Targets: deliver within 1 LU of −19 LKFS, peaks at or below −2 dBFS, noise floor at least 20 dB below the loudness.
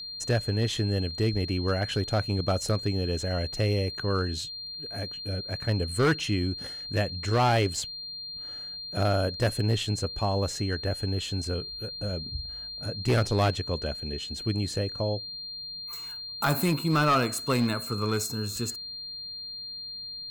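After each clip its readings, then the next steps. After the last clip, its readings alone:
share of clipped samples 0.8%; peaks flattened at −18.0 dBFS; interfering tone 4,200 Hz; level of the tone −36 dBFS; integrated loudness −29.0 LKFS; sample peak −18.0 dBFS; target loudness −19.0 LKFS
→ clipped peaks rebuilt −18 dBFS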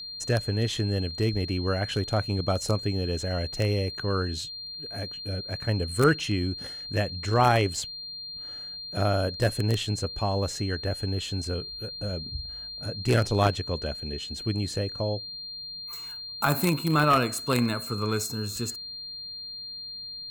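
share of clipped samples 0.0%; interfering tone 4,200 Hz; level of the tone −36 dBFS
→ notch filter 4,200 Hz, Q 30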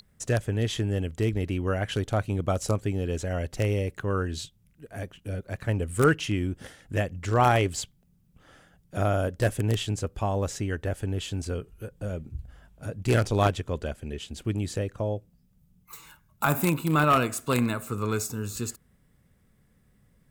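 interfering tone none found; integrated loudness −28.0 LKFS; sample peak −8.5 dBFS; target loudness −19.0 LKFS
→ level +9 dB
brickwall limiter −2 dBFS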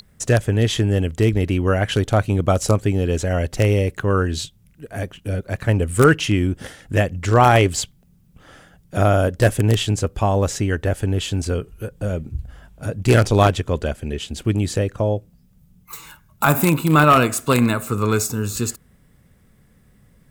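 integrated loudness −19.5 LKFS; sample peak −2.0 dBFS; background noise floor −55 dBFS

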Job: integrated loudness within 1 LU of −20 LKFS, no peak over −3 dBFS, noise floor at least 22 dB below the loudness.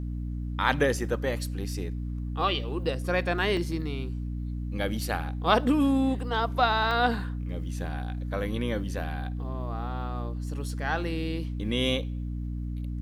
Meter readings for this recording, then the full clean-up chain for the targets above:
number of dropouts 2; longest dropout 1.9 ms; mains hum 60 Hz; hum harmonics up to 300 Hz; level of the hum −30 dBFS; integrated loudness −29.0 LKFS; sample peak −7.5 dBFS; target loudness −20.0 LKFS
→ repair the gap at 0:03.57/0:06.91, 1.9 ms
mains-hum notches 60/120/180/240/300 Hz
level +9 dB
brickwall limiter −3 dBFS

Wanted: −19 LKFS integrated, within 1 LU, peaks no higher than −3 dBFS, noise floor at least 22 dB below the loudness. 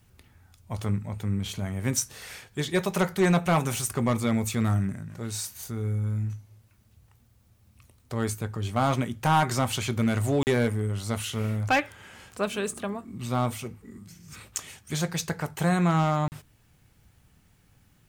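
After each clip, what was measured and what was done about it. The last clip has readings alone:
share of clipped samples 0.4%; peaks flattened at −16.0 dBFS; number of dropouts 2; longest dropout 39 ms; integrated loudness −27.5 LKFS; sample peak −16.0 dBFS; target loudness −19.0 LKFS
→ clipped peaks rebuilt −16 dBFS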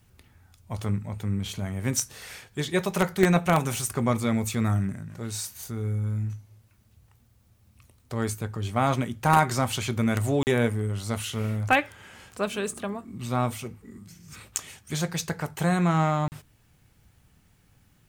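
share of clipped samples 0.0%; number of dropouts 2; longest dropout 39 ms
→ repair the gap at 0:10.43/0:16.28, 39 ms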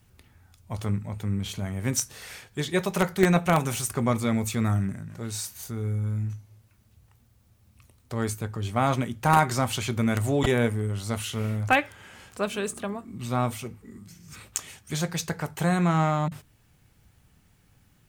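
number of dropouts 0; integrated loudness −27.0 LKFS; sample peak −7.0 dBFS; target loudness −19.0 LKFS
→ level +8 dB
brickwall limiter −3 dBFS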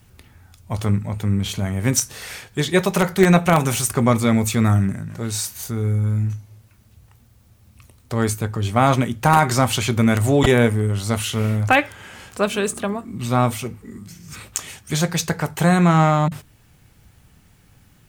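integrated loudness −19.5 LKFS; sample peak −3.0 dBFS; background noise floor −54 dBFS

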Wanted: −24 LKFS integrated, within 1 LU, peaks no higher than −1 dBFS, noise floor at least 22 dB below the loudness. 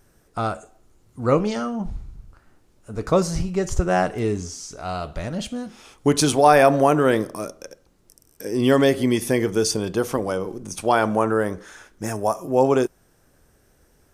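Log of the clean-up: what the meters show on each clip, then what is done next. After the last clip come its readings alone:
integrated loudness −21.5 LKFS; sample peak −1.5 dBFS; target loudness −24.0 LKFS
→ level −2.5 dB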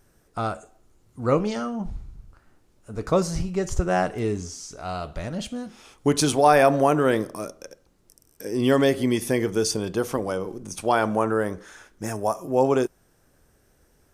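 integrated loudness −24.0 LKFS; sample peak −4.0 dBFS; background noise floor −62 dBFS

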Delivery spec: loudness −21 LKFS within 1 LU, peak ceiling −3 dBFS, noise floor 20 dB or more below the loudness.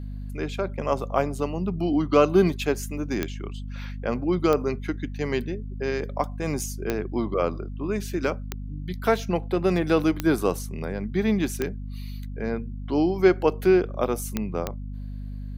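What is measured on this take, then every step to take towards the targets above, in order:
number of clicks 8; mains hum 50 Hz; hum harmonics up to 250 Hz; level of the hum −31 dBFS; integrated loudness −25.5 LKFS; sample peak −5.5 dBFS; target loudness −21.0 LKFS
→ click removal
mains-hum notches 50/100/150/200/250 Hz
level +4.5 dB
brickwall limiter −3 dBFS

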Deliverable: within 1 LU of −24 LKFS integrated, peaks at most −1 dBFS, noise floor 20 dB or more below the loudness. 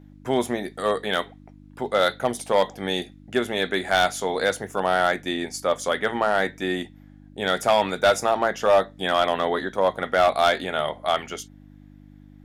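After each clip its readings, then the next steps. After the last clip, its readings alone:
share of clipped samples 0.5%; peaks flattened at −11.0 dBFS; mains hum 50 Hz; hum harmonics up to 300 Hz; level of the hum −45 dBFS; integrated loudness −23.5 LKFS; sample peak −11.0 dBFS; target loudness −24.0 LKFS
→ clipped peaks rebuilt −11 dBFS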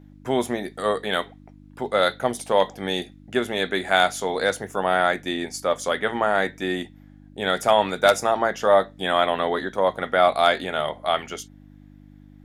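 share of clipped samples 0.0%; mains hum 50 Hz; hum harmonics up to 300 Hz; level of the hum −45 dBFS
→ hum removal 50 Hz, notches 6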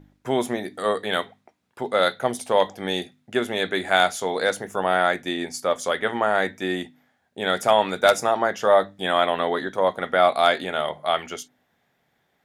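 mains hum none found; integrated loudness −23.0 LKFS; sample peak −2.0 dBFS; target loudness −24.0 LKFS
→ level −1 dB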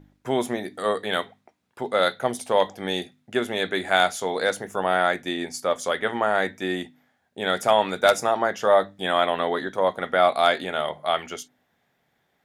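integrated loudness −24.0 LKFS; sample peak −3.0 dBFS; background noise floor −71 dBFS

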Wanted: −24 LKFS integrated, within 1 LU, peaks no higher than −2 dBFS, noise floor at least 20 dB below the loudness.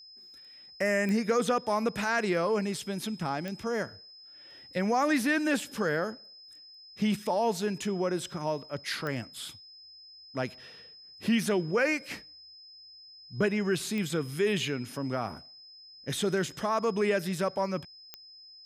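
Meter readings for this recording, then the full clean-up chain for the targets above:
number of clicks 5; interfering tone 5,100 Hz; level of the tone −49 dBFS; integrated loudness −30.0 LKFS; sample peak −15.5 dBFS; target loudness −24.0 LKFS
→ click removal
notch filter 5,100 Hz, Q 30
level +6 dB

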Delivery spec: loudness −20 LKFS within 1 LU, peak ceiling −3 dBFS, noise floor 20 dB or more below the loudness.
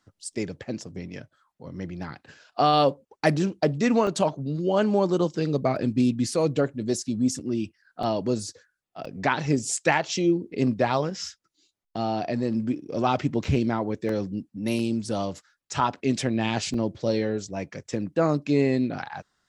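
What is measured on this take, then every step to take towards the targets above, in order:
number of dropouts 8; longest dropout 2.9 ms; integrated loudness −26.0 LKFS; sample peak −6.5 dBFS; target loudness −20.0 LKFS
→ repair the gap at 0:04.07/0:05.76/0:08.03/0:09.05/0:13.44/0:14.09/0:14.79/0:16.74, 2.9 ms
level +6 dB
brickwall limiter −3 dBFS

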